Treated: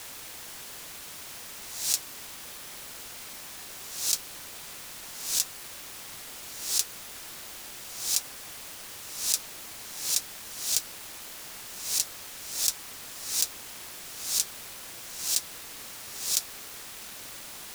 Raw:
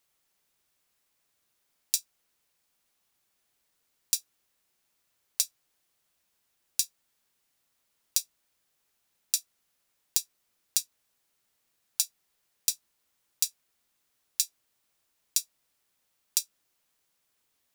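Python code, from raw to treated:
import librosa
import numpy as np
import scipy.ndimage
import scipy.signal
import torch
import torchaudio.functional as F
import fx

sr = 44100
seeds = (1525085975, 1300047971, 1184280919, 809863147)

y = fx.spec_swells(x, sr, rise_s=0.72)
y = fx.quant_dither(y, sr, seeds[0], bits=6, dither='triangular')
y = np.sign(y) * np.maximum(np.abs(y) - 10.0 ** (-37.5 / 20.0), 0.0)
y = fx.doppler_dist(y, sr, depth_ms=0.44)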